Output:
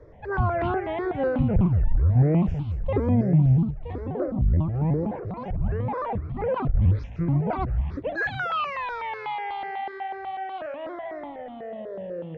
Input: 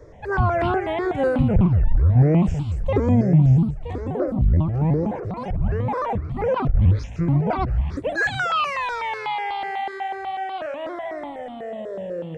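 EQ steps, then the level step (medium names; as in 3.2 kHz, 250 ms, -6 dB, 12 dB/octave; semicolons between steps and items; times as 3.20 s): distance through air 220 m; -3.5 dB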